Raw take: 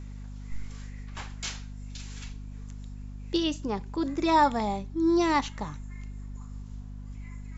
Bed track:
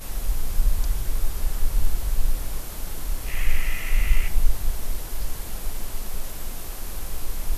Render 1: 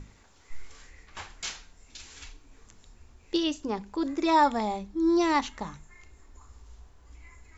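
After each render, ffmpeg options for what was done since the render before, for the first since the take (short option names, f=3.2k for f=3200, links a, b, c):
-af "bandreject=f=50:t=h:w=6,bandreject=f=100:t=h:w=6,bandreject=f=150:t=h:w=6,bandreject=f=200:t=h:w=6,bandreject=f=250:t=h:w=6"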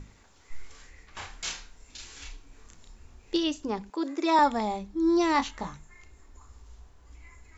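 -filter_complex "[0:a]asettb=1/sr,asplit=3[a][b][c];[a]atrim=end=1.184[d];[b]atrim=start=1.18:end=3.37,asetpts=PTS-STARTPTS,afade=t=in:d=0.004:c=qsin,afade=t=out:st=2.186:d=0.004:c=qsin,asplit=2[e][f];[f]adelay=32,volume=-3dB[g];[e][g]amix=inputs=2:normalize=0,atrim=end_sample=96579[h];[c]atrim=start=3.366[i];[d][h]acrossfade=d=0.004:c1=hsin:c2=qsin[j];[j][i]acrossfade=d=0.004:c1=qsin:c2=hsin,asettb=1/sr,asplit=3[k][l][m];[k]atrim=end=3.904[n];[l]atrim=start=3.9:end=4.39,asetpts=PTS-STARTPTS,afade=t=in:d=0.004:c=qsin,afade=t=out:st=0.486:d=0.004:c=qsin,highpass=f=280:w=0.5412,highpass=f=280:w=1.3066[o];[m]atrim=start=4.386[p];[n][o]acrossfade=d=0.004:c1=hsin:c2=qsin[q];[q][p]acrossfade=d=0.004:c1=qsin:c2=hsin,asettb=1/sr,asplit=3[r][s][t];[r]atrim=end=5.334[u];[s]atrim=start=5.33:end=5.73,asetpts=PTS-STARTPTS,afade=t=in:d=0.004:c=qsin,afade=t=out:st=0.396:d=0.004:c=qsin,asplit=2[v][w];[w]adelay=22,volume=-7.5dB[x];[v][x]amix=inputs=2:normalize=0,atrim=end_sample=17640[y];[t]atrim=start=5.726[z];[u][y]acrossfade=d=0.004:c1=hsin:c2=qsin[aa];[aa][z]acrossfade=d=0.004:c1=qsin:c2=hsin"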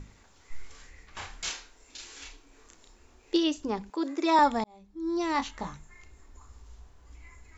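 -filter_complex "[0:a]asettb=1/sr,asplit=3[a][b][c];[a]atrim=end=1.494[d];[b]atrim=start=1.49:end=3.57,asetpts=PTS-STARTPTS,afade=t=in:d=0.004:c=qsin,afade=t=out:st=2.076:d=0.004:c=qsin,lowshelf=f=230:t=q:w=1.5:g=-8.5[e];[c]atrim=start=3.566[f];[d][e]acrossfade=d=0.004:c1=hsin:c2=qsin[g];[g][f]acrossfade=d=0.004:c1=qsin:c2=hsin,asplit=2[h][i];[h]atrim=end=4.64,asetpts=PTS-STARTPTS,afade=t=out:st=4.636:d=0.004:c=hsin[j];[i]atrim=start=4.64,asetpts=PTS-STARTPTS,afade=t=in:d=1.09[k];[j][k]concat=n=2:v=0:a=1"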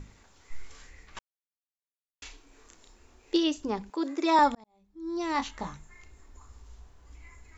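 -filter_complex "[0:a]asplit=4[a][b][c][d];[a]atrim=end=1.19,asetpts=PTS-STARTPTS,afade=t=out:st=1.186:d=0.004:c=hsin[e];[b]atrim=start=1.19:end=2.22,asetpts=PTS-STARTPTS,volume=0[f];[c]atrim=start=2.22:end=4.55,asetpts=PTS-STARTPTS,afade=t=in:d=0.004:c=hsin,afade=t=out:st=2.326:d=0.004:c=hsin[g];[d]atrim=start=4.55,asetpts=PTS-STARTPTS,afade=t=in:d=0.88[h];[e][f][g][h]concat=n=4:v=0:a=1"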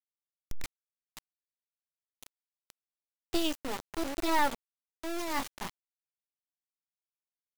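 -af "asoftclip=type=tanh:threshold=-15dB,acrusher=bits=3:dc=4:mix=0:aa=0.000001"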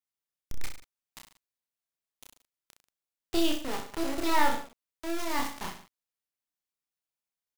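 -af "aecho=1:1:30|63|99.3|139.2|183.2:0.631|0.398|0.251|0.158|0.1"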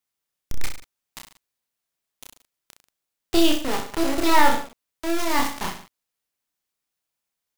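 -af "volume=8.5dB,alimiter=limit=-3dB:level=0:latency=1"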